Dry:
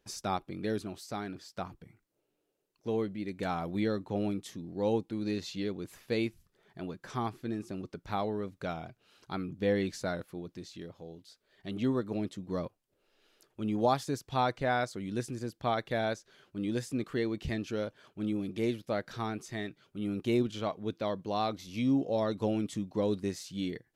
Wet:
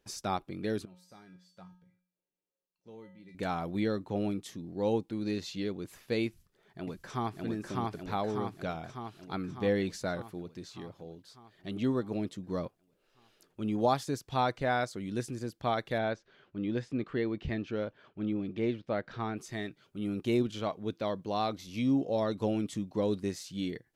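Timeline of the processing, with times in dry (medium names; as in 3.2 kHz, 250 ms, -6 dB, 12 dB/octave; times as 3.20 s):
0.85–3.35 s: feedback comb 180 Hz, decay 0.5 s, harmonics odd, mix 90%
6.27–7.43 s: echo throw 600 ms, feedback 65%, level -0.5 dB
15.98–19.37 s: low-pass 3.1 kHz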